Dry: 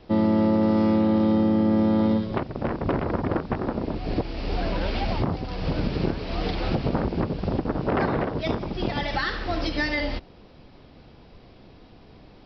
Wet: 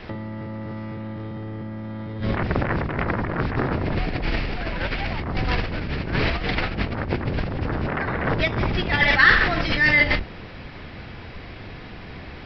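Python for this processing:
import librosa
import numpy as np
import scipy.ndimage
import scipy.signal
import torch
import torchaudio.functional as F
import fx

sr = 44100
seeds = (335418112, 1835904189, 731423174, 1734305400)

y = fx.octave_divider(x, sr, octaves=1, level_db=3.0)
y = fx.over_compress(y, sr, threshold_db=-28.0, ratio=-1.0)
y = fx.peak_eq(y, sr, hz=1900.0, db=14.0, octaves=1.4)
y = y * 10.0 ** (1.0 / 20.0)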